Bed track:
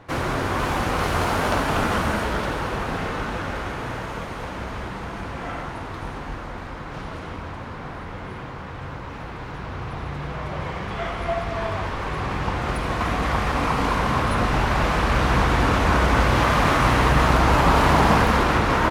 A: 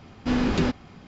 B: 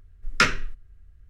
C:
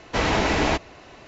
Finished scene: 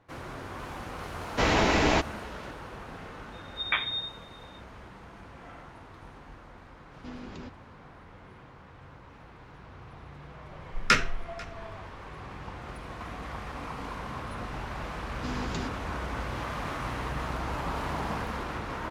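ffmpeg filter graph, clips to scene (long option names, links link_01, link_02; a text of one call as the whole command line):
ffmpeg -i bed.wav -i cue0.wav -i cue1.wav -i cue2.wav -filter_complex "[2:a]asplit=2[link_01][link_02];[1:a]asplit=2[link_03][link_04];[0:a]volume=-16dB[link_05];[link_01]lowpass=frequency=3100:width_type=q:width=0.5098,lowpass=frequency=3100:width_type=q:width=0.6013,lowpass=frequency=3100:width_type=q:width=0.9,lowpass=frequency=3100:width_type=q:width=2.563,afreqshift=-3700[link_06];[link_03]alimiter=limit=-16dB:level=0:latency=1:release=71[link_07];[link_02]aecho=1:1:492:0.075[link_08];[link_04]aemphasis=mode=production:type=75kf[link_09];[3:a]atrim=end=1.27,asetpts=PTS-STARTPTS,volume=-2dB,afade=type=in:duration=0.004:curve=hsin,afade=type=out:start_time=1.266:duration=0.004:curve=hsin,adelay=1240[link_10];[link_06]atrim=end=1.29,asetpts=PTS-STARTPTS,volume=-8dB,afade=type=in:duration=0.004:curve=hsin,afade=type=out:start_time=1.286:duration=0.004:curve=hsin,adelay=3320[link_11];[link_07]atrim=end=1.07,asetpts=PTS-STARTPTS,volume=-17.5dB,afade=type=in:duration=0.004:curve=hsin,afade=type=out:start_time=1.066:duration=0.004:curve=hsin,adelay=6780[link_12];[link_08]atrim=end=1.29,asetpts=PTS-STARTPTS,volume=-2.5dB,afade=type=in:duration=0.004:curve=hsin,afade=type=out:start_time=1.286:duration=0.004:curve=hsin,adelay=463050S[link_13];[link_09]atrim=end=1.07,asetpts=PTS-STARTPTS,volume=-14dB,afade=type=in:duration=0.004:curve=hsin,afade=type=out:start_time=1.066:duration=0.004:curve=hsin,adelay=14970[link_14];[link_05][link_10][link_11][link_12][link_13][link_14]amix=inputs=6:normalize=0" out.wav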